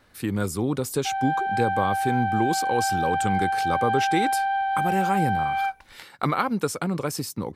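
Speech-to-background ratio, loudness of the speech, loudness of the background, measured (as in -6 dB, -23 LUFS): -2.5 dB, -27.5 LUFS, -25.0 LUFS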